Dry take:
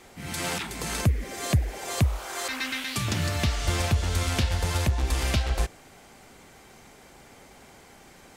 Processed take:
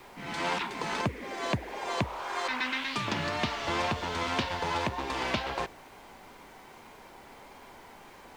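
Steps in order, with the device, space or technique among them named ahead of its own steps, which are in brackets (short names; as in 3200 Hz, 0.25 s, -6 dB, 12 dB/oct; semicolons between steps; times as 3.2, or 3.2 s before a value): horn gramophone (BPF 220–3700 Hz; bell 970 Hz +9.5 dB 0.29 oct; wow and flutter; pink noise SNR 25 dB)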